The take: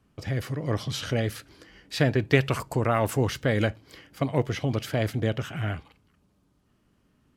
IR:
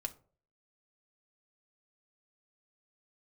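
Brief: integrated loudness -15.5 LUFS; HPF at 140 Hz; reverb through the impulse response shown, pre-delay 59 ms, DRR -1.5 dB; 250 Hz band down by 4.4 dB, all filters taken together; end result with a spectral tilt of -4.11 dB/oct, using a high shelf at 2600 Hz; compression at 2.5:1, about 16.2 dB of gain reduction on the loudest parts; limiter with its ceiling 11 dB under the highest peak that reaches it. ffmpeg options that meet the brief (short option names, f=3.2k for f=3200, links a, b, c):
-filter_complex "[0:a]highpass=140,equalizer=f=250:t=o:g=-5,highshelf=f=2.6k:g=9,acompressor=threshold=-40dB:ratio=2.5,alimiter=level_in=5dB:limit=-24dB:level=0:latency=1,volume=-5dB,asplit=2[a][b];[1:a]atrim=start_sample=2205,adelay=59[c];[b][c]afir=irnorm=-1:irlink=0,volume=2.5dB[d];[a][d]amix=inputs=2:normalize=0,volume=22dB"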